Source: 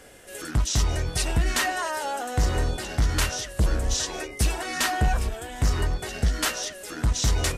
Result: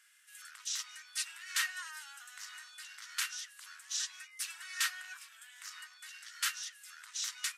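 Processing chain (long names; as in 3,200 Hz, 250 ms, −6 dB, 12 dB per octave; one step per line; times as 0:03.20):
Butterworth high-pass 1,300 Hz 36 dB per octave
expander for the loud parts 1.5 to 1, over −36 dBFS
level −6 dB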